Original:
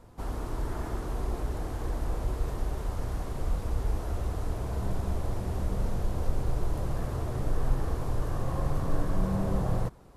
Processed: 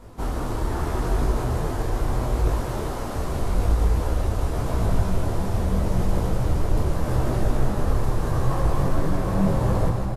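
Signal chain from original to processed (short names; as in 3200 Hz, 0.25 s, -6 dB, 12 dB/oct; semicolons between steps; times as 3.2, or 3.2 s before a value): 2.62–3.16 HPF 190 Hz 12 dB/oct; in parallel at +2.5 dB: limiter -25.5 dBFS, peak gain reduction 11.5 dB; on the sum: wavefolder -15.5 dBFS; feedback echo 0.16 s, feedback 54%, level -6.5 dB; on a send at -7 dB: reverb RT60 4.2 s, pre-delay 0.1 s; on the sum: detuned doubles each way 28 cents; gain +5 dB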